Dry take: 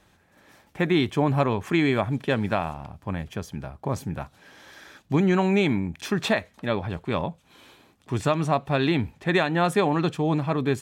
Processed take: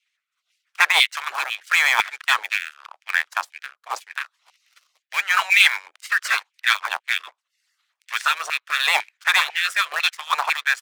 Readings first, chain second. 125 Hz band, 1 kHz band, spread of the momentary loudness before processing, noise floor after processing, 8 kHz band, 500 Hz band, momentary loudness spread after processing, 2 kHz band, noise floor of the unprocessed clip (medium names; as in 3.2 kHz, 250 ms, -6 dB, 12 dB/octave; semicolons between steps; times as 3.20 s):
under -40 dB, +3.5 dB, 12 LU, -81 dBFS, +11.5 dB, -17.0 dB, 15 LU, +13.0 dB, -62 dBFS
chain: median filter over 3 samples; spectral gate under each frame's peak -15 dB weak; frequency weighting A; harmonic-percussive split harmonic -13 dB; waveshaping leveller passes 3; in parallel at -7 dB: bit crusher 4-bit; on the sum: LFO high-pass saw down 2 Hz 780–2400 Hz; rotary cabinet horn 0.85 Hz; trim +3 dB